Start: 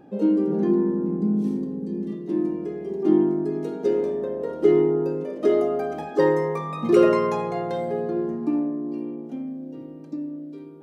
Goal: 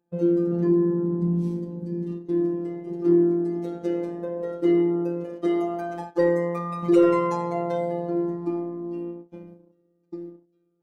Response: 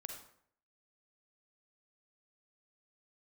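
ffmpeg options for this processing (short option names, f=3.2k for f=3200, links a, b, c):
-af "agate=range=-26dB:threshold=-32dB:ratio=16:detection=peak,afftfilt=real='hypot(re,im)*cos(PI*b)':imag='0':win_size=1024:overlap=0.75,acontrast=81,volume=-5dB"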